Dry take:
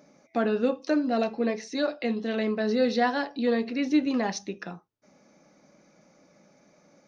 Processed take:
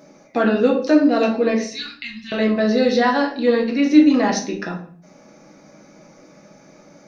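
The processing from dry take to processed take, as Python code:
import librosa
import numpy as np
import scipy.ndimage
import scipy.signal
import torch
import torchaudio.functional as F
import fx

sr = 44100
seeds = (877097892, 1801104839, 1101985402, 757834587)

p1 = fx.cheby1_bandstop(x, sr, low_hz=100.0, high_hz=2500.0, order=2, at=(1.61, 2.32))
p2 = fx.rider(p1, sr, range_db=5, speed_s=2.0)
p3 = p1 + F.gain(torch.from_numpy(p2), 3.0).numpy()
p4 = fx.room_shoebox(p3, sr, seeds[0], volume_m3=57.0, walls='mixed', distance_m=0.64)
y = F.gain(torch.from_numpy(p4), -2.0).numpy()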